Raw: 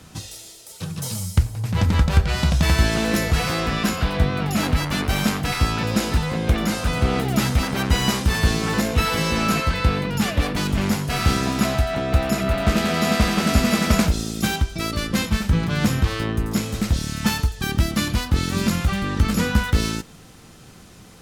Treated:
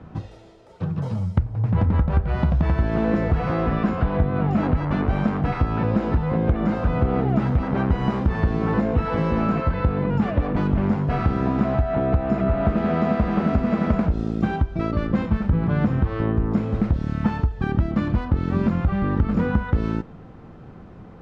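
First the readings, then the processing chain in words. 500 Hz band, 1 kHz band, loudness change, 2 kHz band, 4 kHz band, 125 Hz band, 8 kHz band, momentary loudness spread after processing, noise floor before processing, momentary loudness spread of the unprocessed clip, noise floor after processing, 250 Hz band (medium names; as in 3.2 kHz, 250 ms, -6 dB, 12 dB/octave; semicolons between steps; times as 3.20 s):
+1.0 dB, -1.5 dB, -1.0 dB, -8.0 dB, -19.5 dB, 0.0 dB, under -30 dB, 3 LU, -45 dBFS, 5 LU, -43 dBFS, +1.0 dB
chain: compression, threshold -20 dBFS, peak gain reduction 10 dB; low-pass 1.1 kHz 12 dB/octave; trim +4.5 dB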